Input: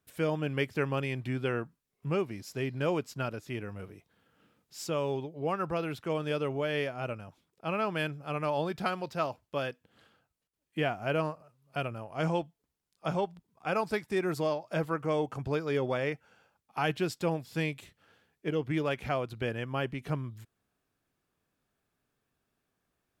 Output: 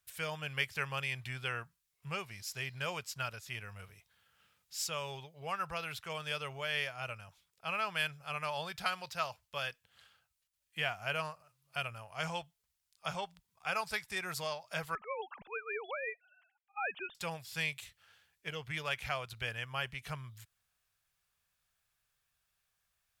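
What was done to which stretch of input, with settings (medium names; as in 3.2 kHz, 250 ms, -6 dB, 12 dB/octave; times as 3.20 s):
14.95–17.15 s: formants replaced by sine waves
whole clip: amplifier tone stack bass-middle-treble 10-0-10; trim +5.5 dB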